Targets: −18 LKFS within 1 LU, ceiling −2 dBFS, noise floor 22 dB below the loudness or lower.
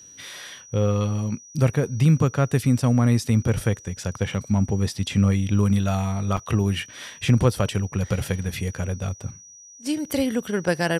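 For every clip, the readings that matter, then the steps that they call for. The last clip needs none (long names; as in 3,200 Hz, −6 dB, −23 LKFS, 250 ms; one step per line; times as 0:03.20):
number of dropouts 1; longest dropout 4.1 ms; interfering tone 5,800 Hz; level of the tone −44 dBFS; integrated loudness −23.5 LKFS; sample peak −8.0 dBFS; target loudness −18.0 LKFS
→ repair the gap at 0:06.37, 4.1 ms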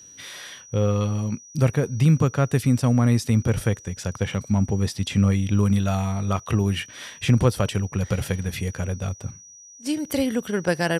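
number of dropouts 0; interfering tone 5,800 Hz; level of the tone −44 dBFS
→ notch filter 5,800 Hz, Q 30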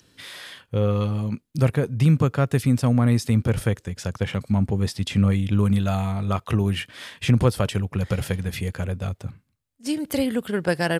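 interfering tone none found; integrated loudness −23.5 LKFS; sample peak −8.0 dBFS; target loudness −18.0 LKFS
→ level +5.5 dB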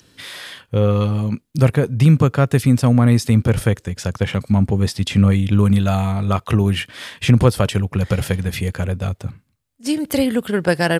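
integrated loudness −18.0 LKFS; sample peak −2.5 dBFS; background noise floor −65 dBFS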